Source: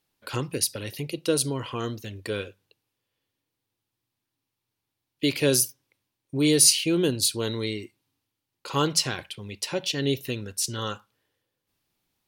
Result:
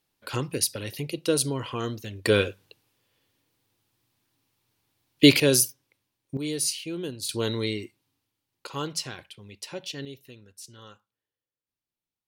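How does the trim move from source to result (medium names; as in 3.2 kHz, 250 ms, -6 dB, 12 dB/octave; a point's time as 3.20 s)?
0 dB
from 2.25 s +9.5 dB
from 5.40 s +1 dB
from 6.37 s -10 dB
from 7.29 s +1 dB
from 8.67 s -8 dB
from 10.05 s -17 dB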